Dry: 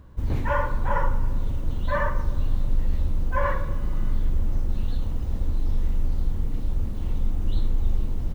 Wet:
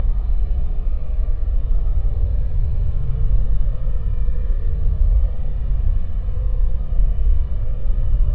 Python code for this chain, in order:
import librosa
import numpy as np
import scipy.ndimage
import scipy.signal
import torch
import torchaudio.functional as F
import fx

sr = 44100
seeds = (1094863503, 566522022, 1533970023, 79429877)

y = fx.delta_mod(x, sr, bps=64000, step_db=-37.5)
y = fx.graphic_eq(y, sr, hz=(125, 250, 500, 2000), db=(7, -6, 4, -4))
y = fx.paulstretch(y, sr, seeds[0], factor=17.0, window_s=0.05, from_s=5.56)
y = fx.air_absorb(y, sr, metres=470.0)
y = y + 0.55 * np.pad(y, (int(1.7 * sr / 1000.0), 0))[:len(y)]